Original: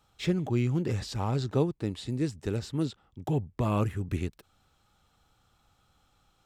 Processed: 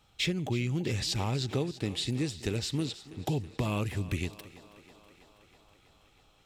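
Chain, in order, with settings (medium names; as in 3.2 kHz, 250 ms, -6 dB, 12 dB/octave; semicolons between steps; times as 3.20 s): resonant high shelf 1.8 kHz +7 dB, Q 1.5; compression 4:1, threshold -31 dBFS, peak gain reduction 9.5 dB; thinning echo 324 ms, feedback 76%, high-pass 210 Hz, level -16 dB; tape noise reduction on one side only decoder only; trim +3 dB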